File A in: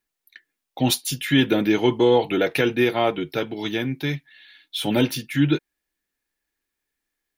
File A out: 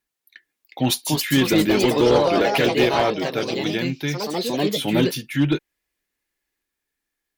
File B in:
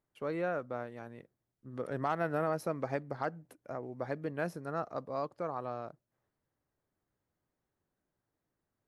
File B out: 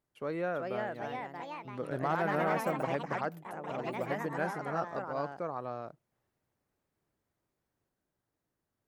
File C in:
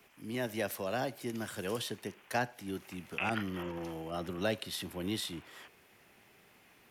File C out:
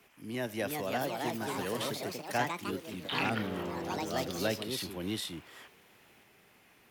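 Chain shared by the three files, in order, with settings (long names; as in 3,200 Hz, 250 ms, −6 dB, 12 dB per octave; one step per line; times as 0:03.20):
delay with pitch and tempo change per echo 419 ms, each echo +3 semitones, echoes 3
asymmetric clip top −13 dBFS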